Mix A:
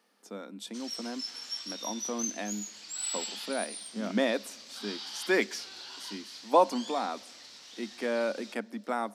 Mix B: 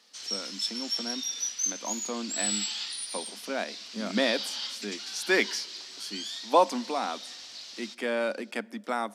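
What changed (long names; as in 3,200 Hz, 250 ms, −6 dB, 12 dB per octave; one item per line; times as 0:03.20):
background: entry −0.60 s
master: add parametric band 4,200 Hz +6.5 dB 2.7 octaves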